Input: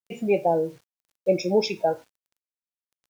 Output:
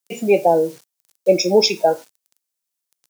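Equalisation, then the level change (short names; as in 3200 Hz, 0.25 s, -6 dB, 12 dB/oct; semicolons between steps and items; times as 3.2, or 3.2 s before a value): HPF 150 Hz 24 dB/oct; tone controls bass -10 dB, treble +10 dB; low shelf 210 Hz +9 dB; +6.5 dB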